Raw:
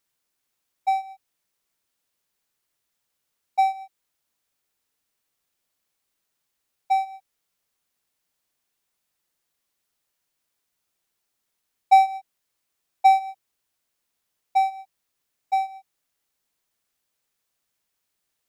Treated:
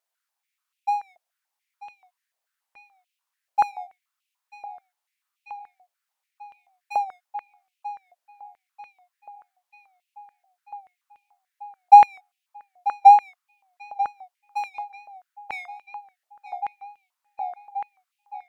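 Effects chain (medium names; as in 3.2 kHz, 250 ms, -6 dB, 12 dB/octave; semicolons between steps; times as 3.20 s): wow and flutter 120 cents; filtered feedback delay 940 ms, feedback 79%, low-pass 4.3 kHz, level -11 dB; step-sequenced high-pass 6.9 Hz 670–2600 Hz; trim -6.5 dB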